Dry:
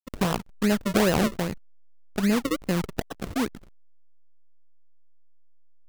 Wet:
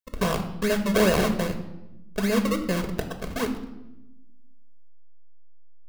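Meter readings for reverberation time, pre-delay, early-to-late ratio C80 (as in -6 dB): 0.90 s, 4 ms, 12.5 dB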